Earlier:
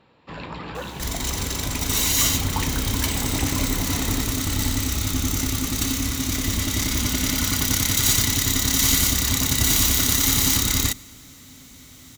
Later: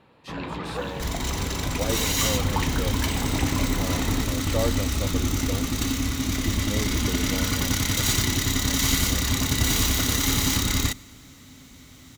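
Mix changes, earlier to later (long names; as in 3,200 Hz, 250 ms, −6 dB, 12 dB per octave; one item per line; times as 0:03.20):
speech: unmuted
first sound: send on
master: add high-shelf EQ 5,400 Hz −9 dB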